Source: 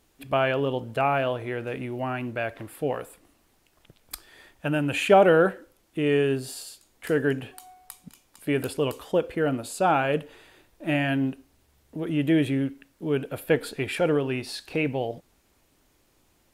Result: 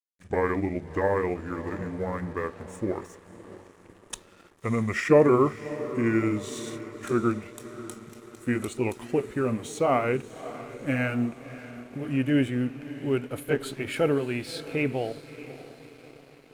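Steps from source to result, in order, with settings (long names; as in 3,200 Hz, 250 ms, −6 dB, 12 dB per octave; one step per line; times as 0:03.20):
pitch glide at a constant tempo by −6.5 semitones ending unshifted
feedback delay with all-pass diffusion 612 ms, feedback 57%, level −14 dB
dead-zone distortion −52 dBFS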